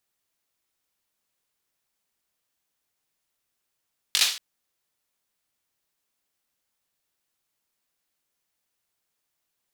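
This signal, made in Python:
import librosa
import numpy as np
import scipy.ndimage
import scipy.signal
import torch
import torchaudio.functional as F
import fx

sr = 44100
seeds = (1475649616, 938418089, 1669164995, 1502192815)

y = fx.drum_clap(sr, seeds[0], length_s=0.23, bursts=4, spacing_ms=20, hz=3700.0, decay_s=0.44)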